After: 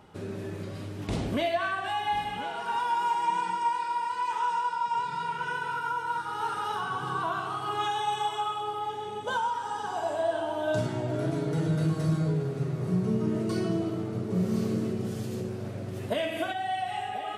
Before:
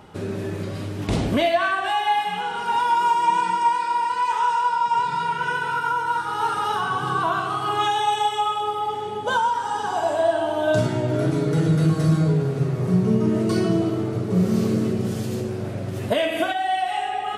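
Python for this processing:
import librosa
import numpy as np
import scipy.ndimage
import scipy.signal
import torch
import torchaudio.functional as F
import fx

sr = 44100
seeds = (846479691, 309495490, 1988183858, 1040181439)

y = x + 10.0 ** (-14.5 / 20.0) * np.pad(x, (int(1041 * sr / 1000.0), 0))[:len(x)]
y = y * 10.0 ** (-8.0 / 20.0)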